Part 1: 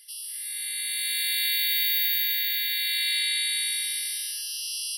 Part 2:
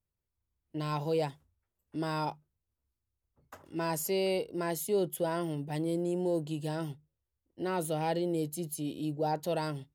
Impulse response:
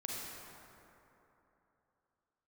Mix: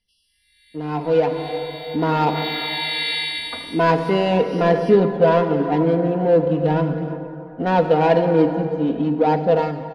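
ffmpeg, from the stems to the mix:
-filter_complex "[0:a]volume=-6.5dB,afade=type=in:start_time=1.96:duration=0.32:silence=0.237137,afade=type=out:start_time=3.12:duration=0.54:silence=0.354813[link_01];[1:a]aecho=1:1:4.2:0.83,adynamicsmooth=sensitivity=3.5:basefreq=930,volume=1dB,asplit=4[link_02][link_03][link_04][link_05];[link_03]volume=-3.5dB[link_06];[link_04]volume=-14.5dB[link_07];[link_05]apad=whole_len=219508[link_08];[link_01][link_08]sidechaincompress=threshold=-38dB:ratio=8:attack=16:release=175[link_09];[2:a]atrim=start_sample=2205[link_10];[link_06][link_10]afir=irnorm=-1:irlink=0[link_11];[link_07]aecho=0:1:320:1[link_12];[link_09][link_02][link_11][link_12]amix=inputs=4:normalize=0,lowpass=4100,dynaudnorm=framelen=260:gausssize=9:maxgain=12dB,aphaser=in_gain=1:out_gain=1:delay=3.5:decay=0.22:speed=0.42:type=triangular"

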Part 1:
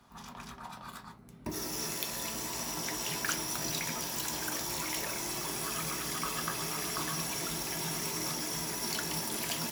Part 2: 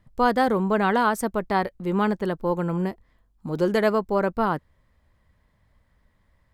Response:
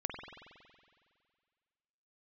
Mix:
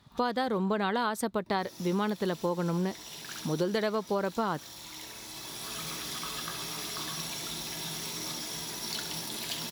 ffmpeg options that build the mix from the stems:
-filter_complex "[0:a]volume=-4.5dB,asplit=2[link_01][link_02];[link_02]volume=-9dB[link_03];[1:a]highpass=88,volume=-0.5dB,asplit=2[link_04][link_05];[link_05]apad=whole_len=428444[link_06];[link_01][link_06]sidechaincompress=threshold=-38dB:ratio=8:attack=16:release=957[link_07];[link_03]aecho=0:1:67|134|201|268|335:1|0.37|0.137|0.0507|0.0187[link_08];[link_07][link_04][link_08]amix=inputs=3:normalize=0,equalizer=frequency=3800:width=2.2:gain=11,acompressor=threshold=-26dB:ratio=6"

